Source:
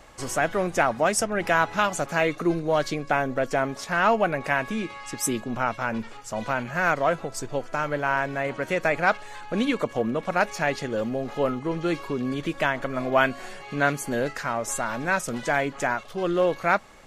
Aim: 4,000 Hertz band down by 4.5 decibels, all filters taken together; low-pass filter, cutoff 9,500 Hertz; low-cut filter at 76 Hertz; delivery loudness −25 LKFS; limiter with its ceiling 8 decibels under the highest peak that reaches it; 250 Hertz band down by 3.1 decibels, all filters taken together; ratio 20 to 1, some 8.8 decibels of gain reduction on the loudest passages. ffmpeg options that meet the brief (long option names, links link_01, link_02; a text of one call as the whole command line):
ffmpeg -i in.wav -af "highpass=76,lowpass=9500,equalizer=frequency=250:width_type=o:gain=-4,equalizer=frequency=4000:width_type=o:gain=-6.5,acompressor=threshold=-24dB:ratio=20,volume=7.5dB,alimiter=limit=-13dB:level=0:latency=1" out.wav